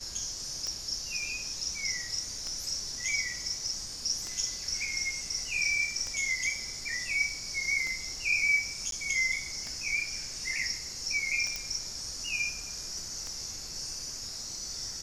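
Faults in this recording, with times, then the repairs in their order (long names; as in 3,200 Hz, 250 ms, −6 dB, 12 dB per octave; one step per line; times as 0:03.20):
scratch tick 33 1/3 rpm −22 dBFS
0:08.91–0:08.92: drop-out 12 ms
0:11.56: click −18 dBFS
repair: click removal
repair the gap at 0:08.91, 12 ms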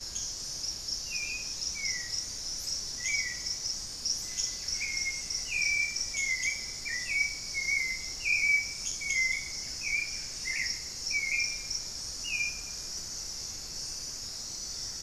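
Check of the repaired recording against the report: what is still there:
none of them is left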